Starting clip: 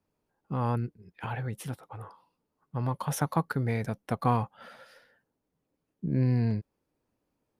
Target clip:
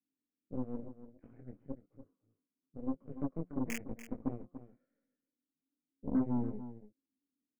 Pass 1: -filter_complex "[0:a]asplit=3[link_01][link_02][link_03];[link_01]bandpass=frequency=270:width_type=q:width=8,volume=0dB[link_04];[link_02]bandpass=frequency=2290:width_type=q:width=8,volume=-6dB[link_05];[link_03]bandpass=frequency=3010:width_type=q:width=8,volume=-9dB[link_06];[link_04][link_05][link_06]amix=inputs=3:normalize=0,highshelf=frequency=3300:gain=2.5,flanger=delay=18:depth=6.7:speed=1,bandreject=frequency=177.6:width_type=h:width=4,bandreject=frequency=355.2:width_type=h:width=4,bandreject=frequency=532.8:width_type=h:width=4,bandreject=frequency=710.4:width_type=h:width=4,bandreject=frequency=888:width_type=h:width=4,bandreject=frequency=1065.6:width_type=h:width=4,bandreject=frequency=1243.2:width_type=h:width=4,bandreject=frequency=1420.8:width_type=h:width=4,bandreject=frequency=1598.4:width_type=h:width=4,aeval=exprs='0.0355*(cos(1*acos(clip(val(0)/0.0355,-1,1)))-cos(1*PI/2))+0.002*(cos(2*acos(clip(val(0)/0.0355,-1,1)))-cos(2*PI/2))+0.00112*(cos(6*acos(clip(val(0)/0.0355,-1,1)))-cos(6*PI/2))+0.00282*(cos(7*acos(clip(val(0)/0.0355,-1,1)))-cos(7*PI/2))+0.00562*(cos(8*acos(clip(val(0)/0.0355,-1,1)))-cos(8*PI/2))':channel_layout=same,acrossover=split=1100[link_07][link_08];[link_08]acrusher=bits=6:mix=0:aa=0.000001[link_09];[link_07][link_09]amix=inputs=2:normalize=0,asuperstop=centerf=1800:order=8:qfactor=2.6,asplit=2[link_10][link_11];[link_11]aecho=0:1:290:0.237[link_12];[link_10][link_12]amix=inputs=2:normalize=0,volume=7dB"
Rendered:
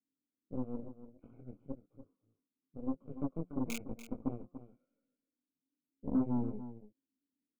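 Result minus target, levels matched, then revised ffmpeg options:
4,000 Hz band +3.5 dB
-filter_complex "[0:a]asplit=3[link_01][link_02][link_03];[link_01]bandpass=frequency=270:width_type=q:width=8,volume=0dB[link_04];[link_02]bandpass=frequency=2290:width_type=q:width=8,volume=-6dB[link_05];[link_03]bandpass=frequency=3010:width_type=q:width=8,volume=-9dB[link_06];[link_04][link_05][link_06]amix=inputs=3:normalize=0,highshelf=frequency=3300:gain=2.5,flanger=delay=18:depth=6.7:speed=1,bandreject=frequency=177.6:width_type=h:width=4,bandreject=frequency=355.2:width_type=h:width=4,bandreject=frequency=532.8:width_type=h:width=4,bandreject=frequency=710.4:width_type=h:width=4,bandreject=frequency=888:width_type=h:width=4,bandreject=frequency=1065.6:width_type=h:width=4,bandreject=frequency=1243.2:width_type=h:width=4,bandreject=frequency=1420.8:width_type=h:width=4,bandreject=frequency=1598.4:width_type=h:width=4,aeval=exprs='0.0355*(cos(1*acos(clip(val(0)/0.0355,-1,1)))-cos(1*PI/2))+0.002*(cos(2*acos(clip(val(0)/0.0355,-1,1)))-cos(2*PI/2))+0.00112*(cos(6*acos(clip(val(0)/0.0355,-1,1)))-cos(6*PI/2))+0.00282*(cos(7*acos(clip(val(0)/0.0355,-1,1)))-cos(7*PI/2))+0.00562*(cos(8*acos(clip(val(0)/0.0355,-1,1)))-cos(8*PI/2))':channel_layout=same,acrossover=split=1100[link_07][link_08];[link_08]acrusher=bits=6:mix=0:aa=0.000001[link_09];[link_07][link_09]amix=inputs=2:normalize=0,asuperstop=centerf=3900:order=8:qfactor=2.6,asplit=2[link_10][link_11];[link_11]aecho=0:1:290:0.237[link_12];[link_10][link_12]amix=inputs=2:normalize=0,volume=7dB"

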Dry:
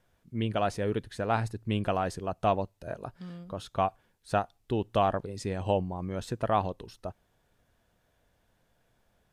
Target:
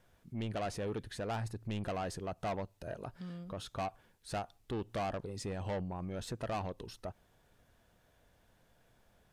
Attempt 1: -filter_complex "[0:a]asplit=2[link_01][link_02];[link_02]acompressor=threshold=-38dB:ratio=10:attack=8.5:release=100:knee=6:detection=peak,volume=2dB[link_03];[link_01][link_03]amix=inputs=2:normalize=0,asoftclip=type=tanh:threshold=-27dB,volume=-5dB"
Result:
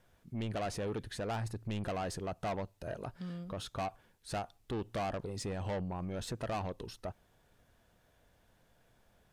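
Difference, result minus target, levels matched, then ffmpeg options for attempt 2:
downward compressor: peak gain reduction −9 dB
-filter_complex "[0:a]asplit=2[link_01][link_02];[link_02]acompressor=threshold=-48dB:ratio=10:attack=8.5:release=100:knee=6:detection=peak,volume=2dB[link_03];[link_01][link_03]amix=inputs=2:normalize=0,asoftclip=type=tanh:threshold=-27dB,volume=-5dB"

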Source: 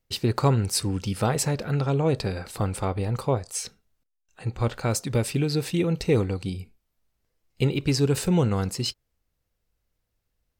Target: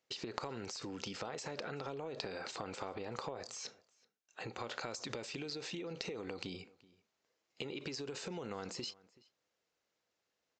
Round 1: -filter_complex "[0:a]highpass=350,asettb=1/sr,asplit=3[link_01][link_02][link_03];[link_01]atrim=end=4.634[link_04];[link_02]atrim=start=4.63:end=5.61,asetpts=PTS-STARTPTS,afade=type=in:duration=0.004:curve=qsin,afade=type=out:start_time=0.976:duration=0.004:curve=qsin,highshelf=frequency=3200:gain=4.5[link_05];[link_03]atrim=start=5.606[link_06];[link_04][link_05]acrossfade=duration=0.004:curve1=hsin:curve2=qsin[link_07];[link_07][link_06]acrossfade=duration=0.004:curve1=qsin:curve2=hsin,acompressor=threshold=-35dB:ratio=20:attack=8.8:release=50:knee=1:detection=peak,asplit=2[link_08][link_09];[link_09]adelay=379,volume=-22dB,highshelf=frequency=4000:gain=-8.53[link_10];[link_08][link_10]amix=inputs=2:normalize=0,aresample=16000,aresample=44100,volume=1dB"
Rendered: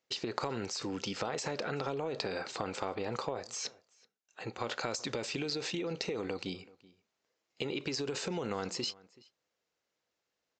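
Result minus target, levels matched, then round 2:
downward compressor: peak gain reduction −7 dB
-filter_complex "[0:a]highpass=350,asettb=1/sr,asplit=3[link_01][link_02][link_03];[link_01]atrim=end=4.634[link_04];[link_02]atrim=start=4.63:end=5.61,asetpts=PTS-STARTPTS,afade=type=in:duration=0.004:curve=qsin,afade=type=out:start_time=0.976:duration=0.004:curve=qsin,highshelf=frequency=3200:gain=4.5[link_05];[link_03]atrim=start=5.606[link_06];[link_04][link_05]acrossfade=duration=0.004:curve1=hsin:curve2=qsin[link_07];[link_07][link_06]acrossfade=duration=0.004:curve1=qsin:curve2=hsin,acompressor=threshold=-42.5dB:ratio=20:attack=8.8:release=50:knee=1:detection=peak,asplit=2[link_08][link_09];[link_09]adelay=379,volume=-22dB,highshelf=frequency=4000:gain=-8.53[link_10];[link_08][link_10]amix=inputs=2:normalize=0,aresample=16000,aresample=44100,volume=1dB"

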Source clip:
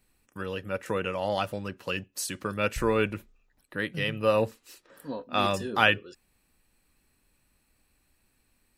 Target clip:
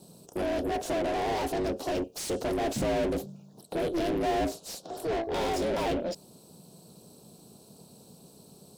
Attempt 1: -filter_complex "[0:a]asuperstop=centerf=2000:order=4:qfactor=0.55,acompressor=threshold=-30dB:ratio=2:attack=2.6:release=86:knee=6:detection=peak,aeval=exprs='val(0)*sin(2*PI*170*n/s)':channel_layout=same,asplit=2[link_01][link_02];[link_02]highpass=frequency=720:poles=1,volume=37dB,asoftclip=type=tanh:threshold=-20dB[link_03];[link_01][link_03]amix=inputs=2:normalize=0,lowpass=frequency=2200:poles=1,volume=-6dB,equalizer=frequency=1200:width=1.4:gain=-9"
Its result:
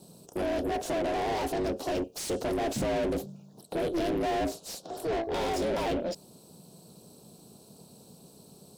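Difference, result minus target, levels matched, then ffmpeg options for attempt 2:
downward compressor: peak gain reduction +7 dB
-filter_complex "[0:a]asuperstop=centerf=2000:order=4:qfactor=0.55,aeval=exprs='val(0)*sin(2*PI*170*n/s)':channel_layout=same,asplit=2[link_01][link_02];[link_02]highpass=frequency=720:poles=1,volume=37dB,asoftclip=type=tanh:threshold=-20dB[link_03];[link_01][link_03]amix=inputs=2:normalize=0,lowpass=frequency=2200:poles=1,volume=-6dB,equalizer=frequency=1200:width=1.4:gain=-9"

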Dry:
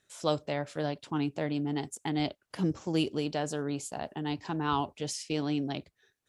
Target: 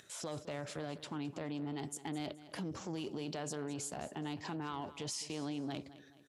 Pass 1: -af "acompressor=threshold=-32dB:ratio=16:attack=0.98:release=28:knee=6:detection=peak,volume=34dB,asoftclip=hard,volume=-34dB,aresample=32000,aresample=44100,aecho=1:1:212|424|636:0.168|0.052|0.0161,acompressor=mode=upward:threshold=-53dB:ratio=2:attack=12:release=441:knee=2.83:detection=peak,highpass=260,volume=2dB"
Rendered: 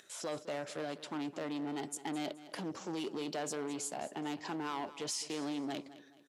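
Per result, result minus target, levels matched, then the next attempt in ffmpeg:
125 Hz band −8.0 dB; downward compressor: peak gain reduction −5.5 dB
-af "acompressor=threshold=-32dB:ratio=16:attack=0.98:release=28:knee=6:detection=peak,volume=34dB,asoftclip=hard,volume=-34dB,aresample=32000,aresample=44100,aecho=1:1:212|424|636:0.168|0.052|0.0161,acompressor=mode=upward:threshold=-53dB:ratio=2:attack=12:release=441:knee=2.83:detection=peak,highpass=86,volume=2dB"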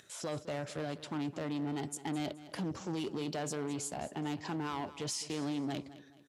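downward compressor: peak gain reduction −5.5 dB
-af "acompressor=threshold=-38dB:ratio=16:attack=0.98:release=28:knee=6:detection=peak,volume=34dB,asoftclip=hard,volume=-34dB,aresample=32000,aresample=44100,aecho=1:1:212|424|636:0.168|0.052|0.0161,acompressor=mode=upward:threshold=-53dB:ratio=2:attack=12:release=441:knee=2.83:detection=peak,highpass=86,volume=2dB"

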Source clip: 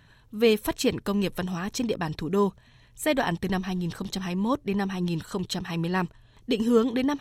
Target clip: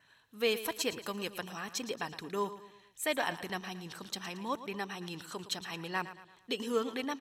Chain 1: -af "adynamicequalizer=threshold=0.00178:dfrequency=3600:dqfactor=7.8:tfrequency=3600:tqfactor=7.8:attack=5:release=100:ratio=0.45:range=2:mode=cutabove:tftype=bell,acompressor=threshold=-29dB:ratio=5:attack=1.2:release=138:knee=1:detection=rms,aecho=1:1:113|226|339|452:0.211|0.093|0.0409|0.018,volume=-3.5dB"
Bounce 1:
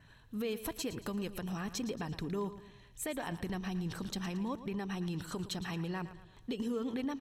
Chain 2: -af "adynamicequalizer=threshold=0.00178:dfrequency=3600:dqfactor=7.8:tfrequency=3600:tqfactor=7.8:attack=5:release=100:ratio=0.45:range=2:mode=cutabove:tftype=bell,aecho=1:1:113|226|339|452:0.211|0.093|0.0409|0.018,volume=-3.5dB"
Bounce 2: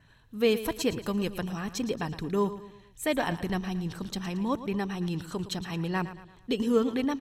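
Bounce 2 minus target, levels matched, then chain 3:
1,000 Hz band −3.5 dB
-af "adynamicequalizer=threshold=0.00178:dfrequency=3600:dqfactor=7.8:tfrequency=3600:tqfactor=7.8:attack=5:release=100:ratio=0.45:range=2:mode=cutabove:tftype=bell,highpass=frequency=870:poles=1,aecho=1:1:113|226|339|452:0.211|0.093|0.0409|0.018,volume=-3.5dB"

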